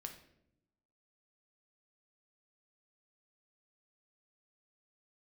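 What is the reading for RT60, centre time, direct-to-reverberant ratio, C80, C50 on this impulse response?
0.80 s, 16 ms, 4.0 dB, 12.5 dB, 9.0 dB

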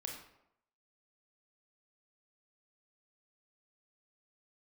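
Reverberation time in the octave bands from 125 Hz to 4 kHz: 0.70 s, 0.80 s, 0.80 s, 0.80 s, 0.65 s, 0.50 s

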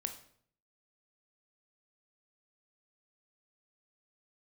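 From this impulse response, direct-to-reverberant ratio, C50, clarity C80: 6.0 dB, 10.5 dB, 14.5 dB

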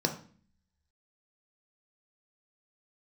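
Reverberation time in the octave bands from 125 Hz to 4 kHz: 0.75 s, 0.80 s, 0.45 s, 0.40 s, 0.45 s, 0.40 s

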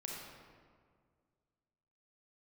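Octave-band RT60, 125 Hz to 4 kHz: 2.4 s, 2.2 s, 2.0 s, 1.8 s, 1.4 s, 1.1 s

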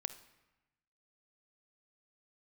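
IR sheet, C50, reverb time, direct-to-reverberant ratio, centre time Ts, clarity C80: 12.0 dB, 1.0 s, 10.5 dB, 8 ms, 15.0 dB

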